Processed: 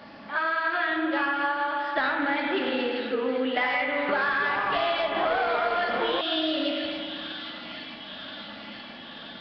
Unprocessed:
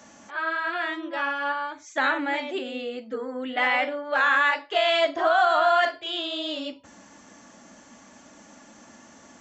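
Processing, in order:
high-shelf EQ 3,600 Hz +4.5 dB
asymmetric clip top −17 dBFS, bottom −14.5 dBFS
delay with a high-pass on its return 978 ms, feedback 69%, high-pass 2,900 Hz, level −12.5 dB
spring reverb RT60 2.3 s, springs 38/57 ms, chirp 40 ms, DRR 4 dB
0:03.89–0:06.21: delay with pitch and tempo change per echo 195 ms, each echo −6 semitones, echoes 3, each echo −6 dB
downward compressor 12 to 1, threshold −27 dBFS, peak gain reduction 13.5 dB
level +5 dB
Nellymoser 22 kbit/s 11,025 Hz

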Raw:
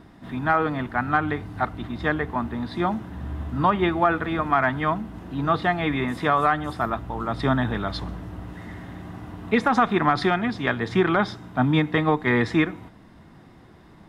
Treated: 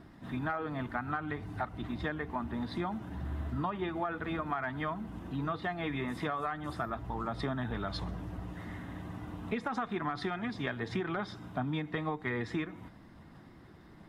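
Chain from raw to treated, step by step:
spectral magnitudes quantised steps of 15 dB
downward compressor, threshold −27 dBFS, peak gain reduction 11.5 dB
level −4.5 dB

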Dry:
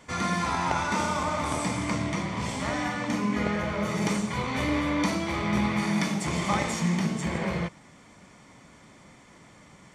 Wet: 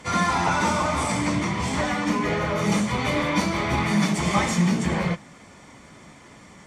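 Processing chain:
time stretch by phase vocoder 0.67×
harmonic generator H 5 −31 dB, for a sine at −17 dBFS
level +7.5 dB

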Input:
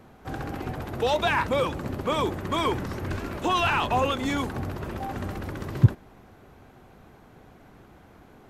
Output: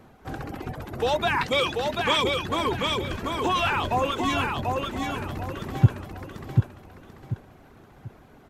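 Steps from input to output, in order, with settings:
0:01.41–0:02.24: meter weighting curve D
reverb reduction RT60 0.7 s
repeating echo 739 ms, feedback 31%, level −3.5 dB

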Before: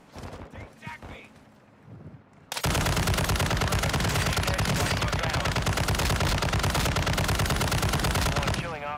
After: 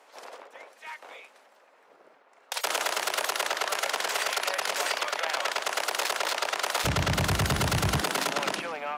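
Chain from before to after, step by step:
high-pass filter 460 Hz 24 dB per octave, from 0:06.84 61 Hz, from 0:08.01 250 Hz

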